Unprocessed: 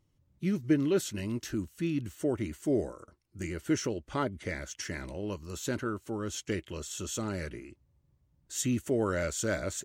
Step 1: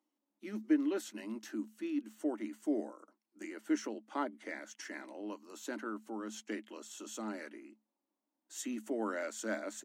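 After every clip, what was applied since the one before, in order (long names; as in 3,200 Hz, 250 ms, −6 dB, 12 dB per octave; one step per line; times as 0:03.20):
dynamic equaliser 1,800 Hz, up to +4 dB, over −51 dBFS, Q 2.8
Chebyshev high-pass with heavy ripple 210 Hz, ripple 9 dB
level −1 dB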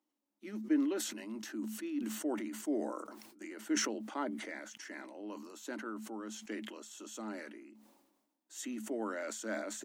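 level that may fall only so fast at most 46 dB per second
level −2 dB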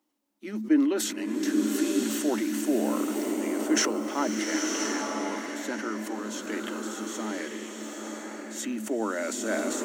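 slow-attack reverb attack 1,020 ms, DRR 1 dB
level +8.5 dB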